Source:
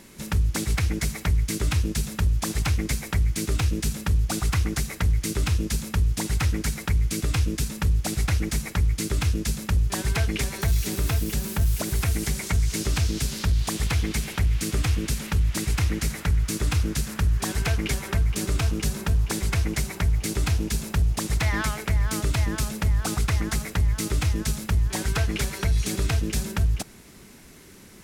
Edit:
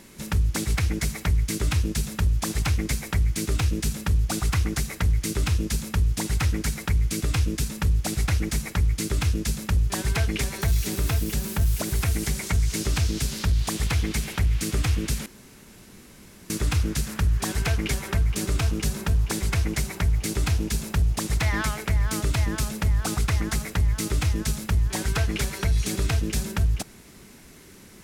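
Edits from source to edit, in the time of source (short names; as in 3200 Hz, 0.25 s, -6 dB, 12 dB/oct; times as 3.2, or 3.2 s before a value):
15.26–16.5 room tone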